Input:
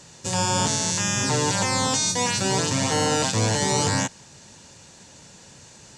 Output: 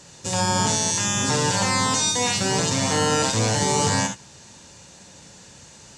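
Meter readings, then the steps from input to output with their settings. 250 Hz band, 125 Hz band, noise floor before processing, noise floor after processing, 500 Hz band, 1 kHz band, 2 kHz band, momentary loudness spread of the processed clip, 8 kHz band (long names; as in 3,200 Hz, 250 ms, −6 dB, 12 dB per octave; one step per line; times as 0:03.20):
+1.0 dB, +0.5 dB, −49 dBFS, −47 dBFS, +1.0 dB, +2.0 dB, +1.5 dB, 4 LU, +1.5 dB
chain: reverb whose tail is shaped and stops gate 90 ms rising, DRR 5 dB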